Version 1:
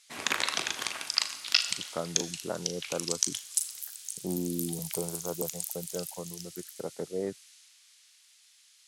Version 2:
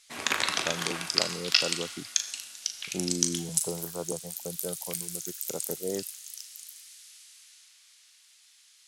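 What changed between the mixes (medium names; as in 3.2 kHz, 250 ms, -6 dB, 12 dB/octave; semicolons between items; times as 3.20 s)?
speech: entry -1.30 s; background: send +7.0 dB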